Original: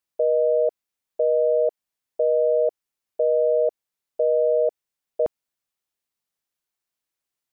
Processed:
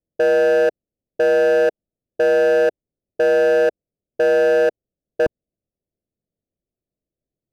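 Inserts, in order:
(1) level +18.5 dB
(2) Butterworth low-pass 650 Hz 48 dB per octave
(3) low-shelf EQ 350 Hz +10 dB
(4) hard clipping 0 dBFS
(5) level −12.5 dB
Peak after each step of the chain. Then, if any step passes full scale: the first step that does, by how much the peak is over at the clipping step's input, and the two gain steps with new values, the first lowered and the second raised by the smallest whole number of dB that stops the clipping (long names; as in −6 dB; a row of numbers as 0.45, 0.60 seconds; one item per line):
+5.0, +4.5, +7.5, 0.0, −12.5 dBFS
step 1, 7.5 dB
step 1 +10.5 dB, step 5 −4.5 dB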